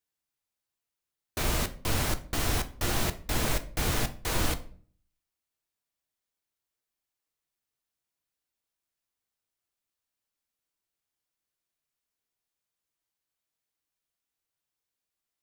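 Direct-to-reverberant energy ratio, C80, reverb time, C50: 8.5 dB, 20.5 dB, 0.50 s, 16.0 dB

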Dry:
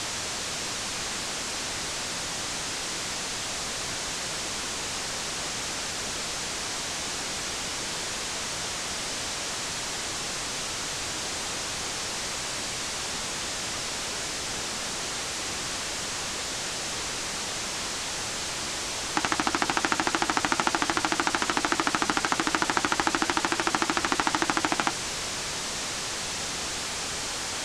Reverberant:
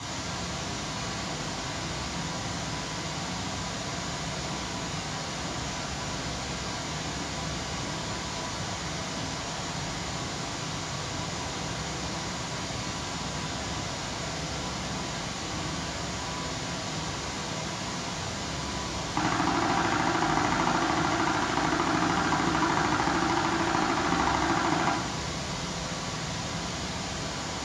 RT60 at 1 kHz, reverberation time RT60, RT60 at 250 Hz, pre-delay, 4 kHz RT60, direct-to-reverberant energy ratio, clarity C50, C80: 0.95 s, 1.1 s, 1.5 s, 3 ms, 0.75 s, −5.5 dB, 2.0 dB, 4.5 dB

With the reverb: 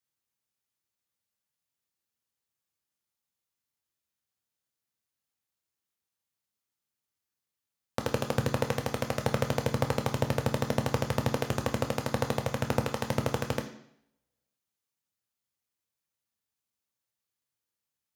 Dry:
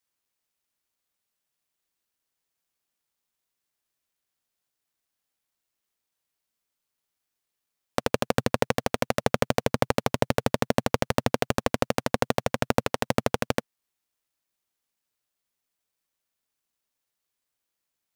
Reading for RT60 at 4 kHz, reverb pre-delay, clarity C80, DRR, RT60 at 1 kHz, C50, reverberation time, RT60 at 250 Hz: 0.70 s, 3 ms, 13.0 dB, 4.5 dB, 0.70 s, 10.5 dB, 0.70 s, 0.70 s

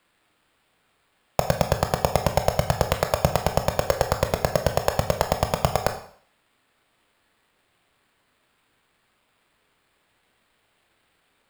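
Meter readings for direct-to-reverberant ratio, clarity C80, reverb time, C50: 5.5 dB, 13.0 dB, 0.55 s, 9.5 dB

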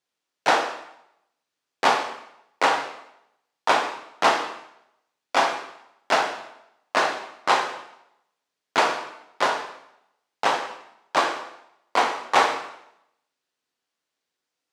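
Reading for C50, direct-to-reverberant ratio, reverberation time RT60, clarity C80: 7.5 dB, 3.0 dB, 0.80 s, 11.0 dB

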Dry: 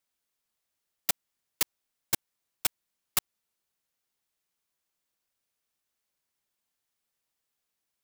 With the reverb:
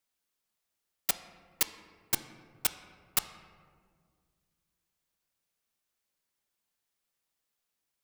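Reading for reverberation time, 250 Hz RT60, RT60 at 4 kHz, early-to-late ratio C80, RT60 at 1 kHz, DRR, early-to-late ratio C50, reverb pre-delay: 1.9 s, 2.7 s, 0.90 s, 13.5 dB, 1.7 s, 10.0 dB, 12.0 dB, 5 ms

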